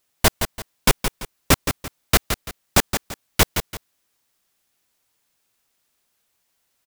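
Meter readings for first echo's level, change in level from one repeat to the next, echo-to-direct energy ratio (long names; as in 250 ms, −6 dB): −8.0 dB, −10.0 dB, −7.5 dB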